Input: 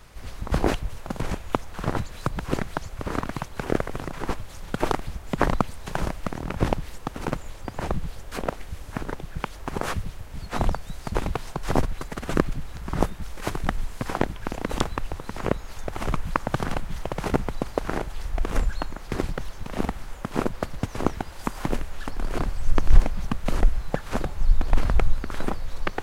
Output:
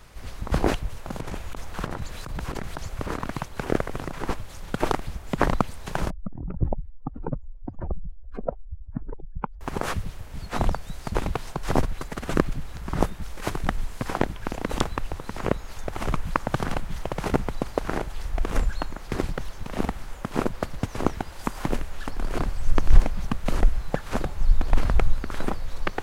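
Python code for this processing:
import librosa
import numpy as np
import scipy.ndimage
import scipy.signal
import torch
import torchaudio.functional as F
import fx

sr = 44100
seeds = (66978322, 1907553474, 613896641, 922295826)

y = fx.over_compress(x, sr, threshold_db=-30.0, ratio=-1.0, at=(1.07, 3.2))
y = fx.spec_expand(y, sr, power=2.5, at=(6.1, 9.61))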